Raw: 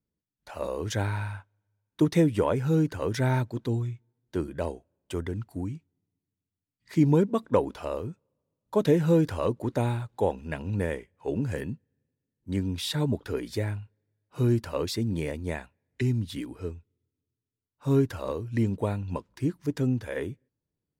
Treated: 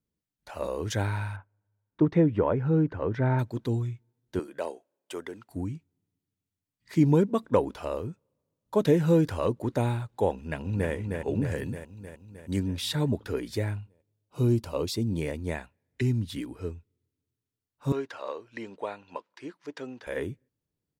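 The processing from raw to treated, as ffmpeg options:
ffmpeg -i in.wav -filter_complex "[0:a]asettb=1/sr,asplit=3[link_01][link_02][link_03];[link_01]atrim=end=1.364[link_04];[link_02]atrim=start=1.36:end=3.39,asetpts=PTS-STARTPTS,afade=type=in:duration=0.004:curve=qsin,afade=type=out:start_time=2.026:duration=0.004:curve=qsin,lowpass=1700[link_05];[link_03]atrim=start=3.386[link_06];[link_04][link_05]acrossfade=duration=0.004:curve1=hsin:curve2=qsin[link_07];[link_07][link_06]acrossfade=duration=0.004:curve1=qsin:curve2=hsin,asettb=1/sr,asplit=3[link_08][link_09][link_10];[link_08]atrim=end=4.394[link_11];[link_09]atrim=start=4.39:end=5.49,asetpts=PTS-STARTPTS,afade=type=in:duration=0.004:curve=qsin,afade=type=out:start_time=1.096:duration=0.004:curve=qsin,highpass=410[link_12];[link_10]atrim=start=5.486[link_13];[link_11][link_12]acrossfade=duration=0.004:curve1=hsin:curve2=qsin[link_14];[link_14][link_13]acrossfade=duration=0.004:curve1=qsin:curve2=hsin,asplit=2[link_15][link_16];[link_16]afade=type=in:start_time=10.33:duration=0.01,afade=type=out:start_time=10.91:duration=0.01,aecho=0:1:310|620|930|1240|1550|1860|2170|2480|2790|3100:0.595662|0.38718|0.251667|0.163584|0.106329|0.0691141|0.0449242|0.0292007|0.0189805|0.0123373[link_17];[link_15][link_17]amix=inputs=2:normalize=0,asettb=1/sr,asplit=3[link_18][link_19][link_20];[link_18]atrim=end=11.634[link_21];[link_19]atrim=start=11.63:end=12.6,asetpts=PTS-STARTPTS,afade=type=in:duration=0.004:curve=qsin,afade=type=out:start_time=0.966:duration=0.004:curve=qsin,bass=frequency=250:gain=0,treble=frequency=4000:gain=8[link_22];[link_20]atrim=start=12.596[link_23];[link_21][link_22]acrossfade=duration=0.004:curve1=hsin:curve2=qsin[link_24];[link_24][link_23]acrossfade=duration=0.004:curve1=qsin:curve2=hsin,asettb=1/sr,asplit=3[link_25][link_26][link_27];[link_25]atrim=end=13.814[link_28];[link_26]atrim=start=13.81:end=15.21,asetpts=PTS-STARTPTS,afade=type=in:duration=0.004:curve=qsin,afade=type=out:start_time=1.396:duration=0.004:curve=qsin,equalizer=frequency=1700:width=2.3:gain=-11[link_29];[link_27]atrim=start=15.206[link_30];[link_28][link_29]acrossfade=duration=0.004:curve1=hsin:curve2=qsin[link_31];[link_31][link_30]acrossfade=duration=0.004:curve1=qsin:curve2=hsin,asettb=1/sr,asplit=3[link_32][link_33][link_34];[link_32]atrim=end=17.924[link_35];[link_33]atrim=start=17.92:end=20.07,asetpts=PTS-STARTPTS,afade=type=in:duration=0.004:curve=qsin,afade=type=out:start_time=2.146:duration=0.004:curve=qsin,highpass=570,lowpass=4800[link_36];[link_34]atrim=start=20.066[link_37];[link_35][link_36]acrossfade=duration=0.004:curve1=hsin:curve2=qsin[link_38];[link_38][link_37]acrossfade=duration=0.004:curve1=qsin:curve2=hsin" out.wav

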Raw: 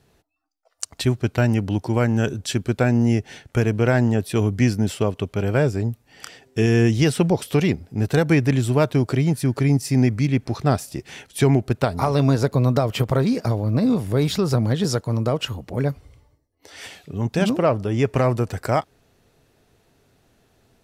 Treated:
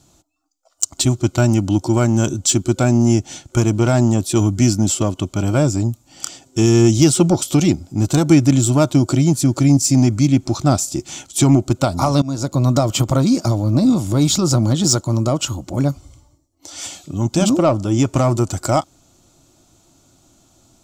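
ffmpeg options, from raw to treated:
ffmpeg -i in.wav -filter_complex "[0:a]asplit=2[link_01][link_02];[link_01]atrim=end=12.22,asetpts=PTS-STARTPTS,afade=type=out:start_time=12.216:duration=0.004:curve=hsin:silence=0.0707946[link_03];[link_02]atrim=start=12.22,asetpts=PTS-STARTPTS,afade=type=in:duration=0.49:silence=0.0707946[link_04];[link_03][link_04]concat=n=2:v=0:a=1,equalizer=frequency=7100:width_type=o:width=0.69:gain=15,acontrast=71,superequalizer=6b=1.78:7b=0.316:11b=0.282:12b=0.562:16b=0.708,volume=-2dB" out.wav

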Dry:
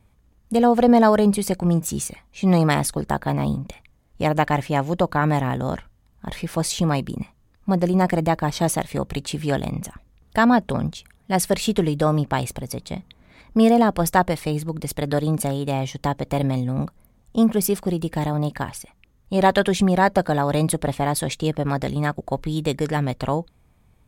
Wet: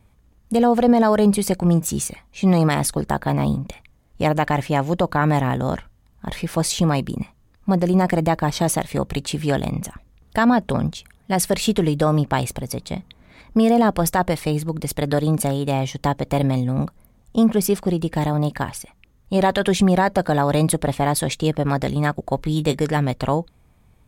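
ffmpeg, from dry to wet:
ffmpeg -i in.wav -filter_complex "[0:a]asettb=1/sr,asplit=3[link_01][link_02][link_03];[link_01]atrim=end=17.434[link_04];[link_02]atrim=start=17.43:end=18.15,asetpts=PTS-STARTPTS,afade=type=in:duration=0.004:curve=qsin,afade=type=out:start_time=0.716:duration=0.004:curve=qsin,highshelf=frequency=11000:gain=-8[link_05];[link_03]atrim=start=18.146[link_06];[link_04][link_05]acrossfade=duration=0.004:curve1=hsin:curve2=qsin[link_07];[link_07][link_06]acrossfade=duration=0.004:curve1=qsin:curve2=hsin,asettb=1/sr,asplit=3[link_08][link_09][link_10];[link_08]atrim=end=22.394[link_11];[link_09]atrim=start=22.39:end=22.83,asetpts=PTS-STARTPTS,afade=type=in:duration=0.004:curve=qsin,afade=type=out:start_time=0.436:duration=0.004:curve=qsin,asplit=2[link_12][link_13];[link_13]adelay=20,volume=-12dB[link_14];[link_12][link_14]amix=inputs=2:normalize=0,atrim=end_sample=19404[link_15];[link_10]atrim=start=22.826[link_16];[link_11][link_15]acrossfade=duration=0.004:curve1=hsin:curve2=qsin[link_17];[link_17][link_16]acrossfade=duration=0.004:curve1=qsin:curve2=hsin,alimiter=level_in=8.5dB:limit=-1dB:release=50:level=0:latency=1,volume=-6dB" out.wav

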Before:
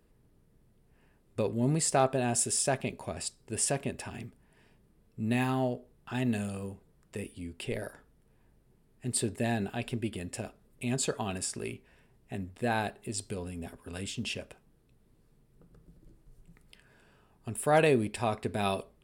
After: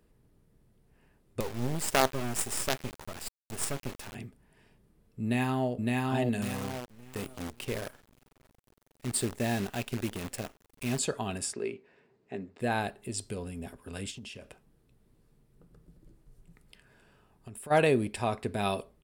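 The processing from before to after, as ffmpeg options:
ffmpeg -i in.wav -filter_complex "[0:a]asettb=1/sr,asplit=3[link_01][link_02][link_03];[link_01]atrim=end=1.404[link_04];[link_02]atrim=start=1.4:end=4.15,asetpts=PTS-STARTPTS,afade=type=in:duration=0.004:curve=qsin,afade=type=out:start_time=2.746:duration=0.004:curve=qsin,acrusher=bits=4:dc=4:mix=0:aa=0.000001[link_05];[link_03]atrim=start=4.146[link_06];[link_04][link_05]acrossfade=duration=0.004:curve1=hsin:curve2=qsin[link_07];[link_07][link_06]acrossfade=duration=0.004:curve1=qsin:curve2=hsin,asplit=2[link_08][link_09];[link_09]afade=type=in:start_time=5.22:duration=0.01,afade=type=out:start_time=5.73:duration=0.01,aecho=0:1:560|1120|1680|2240|2800:0.891251|0.311938|0.109178|0.0382124|0.0133743[link_10];[link_08][link_10]amix=inputs=2:normalize=0,asettb=1/sr,asplit=3[link_11][link_12][link_13];[link_11]atrim=end=6.424[link_14];[link_12]atrim=start=6.42:end=10.99,asetpts=PTS-STARTPTS,afade=type=in:duration=0.004:curve=qsin,afade=type=out:start_time=4.566:duration=0.004:curve=qsin,acrusher=bits=7:dc=4:mix=0:aa=0.000001[link_15];[link_13]atrim=start=10.986[link_16];[link_14][link_15]acrossfade=duration=0.004:curve1=hsin:curve2=qsin[link_17];[link_17][link_16]acrossfade=duration=0.004:curve1=qsin:curve2=hsin,asettb=1/sr,asplit=3[link_18][link_19][link_20];[link_18]atrim=end=11.534[link_21];[link_19]atrim=start=11.53:end=12.6,asetpts=PTS-STARTPTS,afade=type=in:duration=0.004:curve=qsin,afade=type=out:start_time=1.066:duration=0.004:curve=qsin,highpass=200,equalizer=frequency=410:width_type=q:width=4:gain=7,equalizer=frequency=3200:width_type=q:width=4:gain=-6,equalizer=frequency=5600:width_type=q:width=4:gain=-6,lowpass=frequency=6100:width=0.5412,lowpass=frequency=6100:width=1.3066[link_22];[link_20]atrim=start=12.596[link_23];[link_21][link_22]acrossfade=duration=0.004:curve1=hsin:curve2=qsin[link_24];[link_24][link_23]acrossfade=duration=0.004:curve1=qsin:curve2=hsin,asplit=3[link_25][link_26][link_27];[link_25]afade=type=out:start_time=14.1:duration=0.02[link_28];[link_26]acompressor=threshold=-41dB:ratio=6:attack=3.2:release=140:knee=1:detection=peak,afade=type=in:start_time=14.1:duration=0.02,afade=type=out:start_time=17.7:duration=0.02[link_29];[link_27]afade=type=in:start_time=17.7:duration=0.02[link_30];[link_28][link_29][link_30]amix=inputs=3:normalize=0" out.wav

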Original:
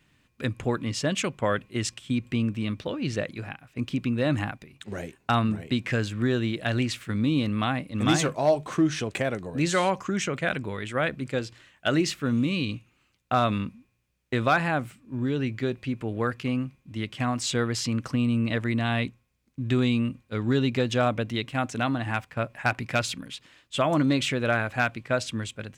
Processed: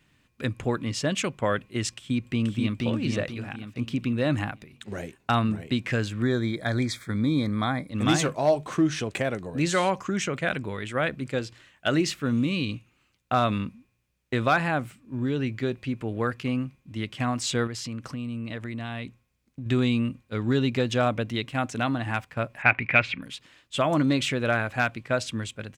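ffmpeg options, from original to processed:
ffmpeg -i in.wav -filter_complex "[0:a]asplit=2[link_01][link_02];[link_02]afade=type=in:start_time=1.92:duration=0.01,afade=type=out:start_time=2.85:duration=0.01,aecho=0:1:480|960|1440|1920|2400:0.794328|0.278015|0.0973052|0.0340568|0.0119199[link_03];[link_01][link_03]amix=inputs=2:normalize=0,asettb=1/sr,asplit=3[link_04][link_05][link_06];[link_04]atrim=end=6.224[link_07];[link_05]atrim=start=6.22:end=7.9,asetpts=PTS-STARTPTS,afade=type=in:duration=0.004:curve=qsin,afade=type=out:start_time=1.676:duration=0.004:curve=qsin,asuperstop=centerf=2800:order=12:qfactor=3.6[link_08];[link_06]atrim=start=7.896[link_09];[link_07][link_08]acrossfade=duration=0.004:curve1=hsin:curve2=qsin[link_10];[link_10][link_09]acrossfade=duration=0.004:curve1=qsin:curve2=hsin,asettb=1/sr,asplit=3[link_11][link_12][link_13];[link_11]atrim=end=17.674[link_14];[link_12]atrim=start=17.67:end=19.66,asetpts=PTS-STARTPTS,afade=type=in:duration=0.004:curve=qsin,afade=type=out:start_time=1.986:duration=0.004:curve=qsin,acompressor=threshold=-34dB:ratio=2.5:attack=3.2:release=140:knee=1:detection=peak[link_15];[link_13]atrim=start=19.656[link_16];[link_14][link_15]acrossfade=duration=0.004:curve1=hsin:curve2=qsin[link_17];[link_17][link_16]acrossfade=duration=0.004:curve1=qsin:curve2=hsin,asettb=1/sr,asplit=3[link_18][link_19][link_20];[link_18]atrim=end=22.624[link_21];[link_19]atrim=start=22.62:end=23.22,asetpts=PTS-STARTPTS,afade=type=in:duration=0.004:curve=qsin,afade=type=out:start_time=0.596:duration=0.004:curve=qsin,lowpass=frequency=2300:width_type=q:width=4.8[link_22];[link_20]atrim=start=23.216[link_23];[link_21][link_22]acrossfade=duration=0.004:curve1=hsin:curve2=qsin[link_24];[link_24][link_23]acrossfade=duration=0.004:curve1=qsin:curve2=hsin" out.wav

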